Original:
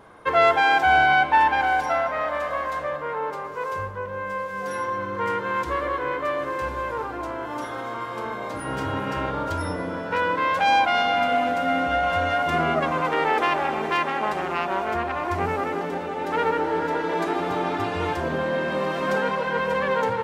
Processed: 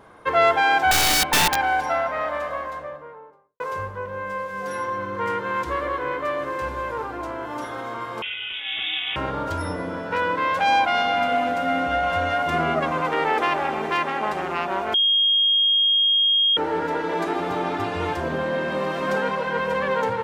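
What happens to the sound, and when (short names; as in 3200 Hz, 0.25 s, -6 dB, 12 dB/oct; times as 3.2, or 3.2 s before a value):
0.91–1.56 wrapped overs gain 13.5 dB
2.23–3.6 studio fade out
8.22–9.16 inverted band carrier 3600 Hz
14.94–16.57 bleep 3250 Hz -15.5 dBFS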